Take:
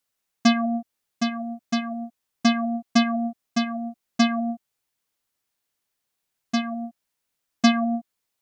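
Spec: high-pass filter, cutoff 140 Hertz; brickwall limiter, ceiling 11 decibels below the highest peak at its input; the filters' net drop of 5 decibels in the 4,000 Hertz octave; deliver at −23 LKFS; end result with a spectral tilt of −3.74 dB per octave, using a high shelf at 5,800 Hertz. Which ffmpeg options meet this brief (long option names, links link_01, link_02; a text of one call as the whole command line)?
ffmpeg -i in.wav -af "highpass=140,equalizer=frequency=4000:width_type=o:gain=-4.5,highshelf=frequency=5800:gain=-5.5,volume=6.5dB,alimiter=limit=-9dB:level=0:latency=1" out.wav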